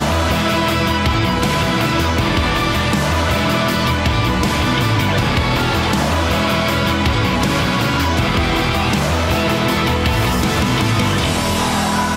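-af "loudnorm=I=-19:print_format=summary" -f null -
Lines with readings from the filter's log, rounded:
Input Integrated:    -16.2 LUFS
Input True Peak:      -4.0 dBTP
Input LRA:             0.2 LU
Input Threshold:     -26.2 LUFS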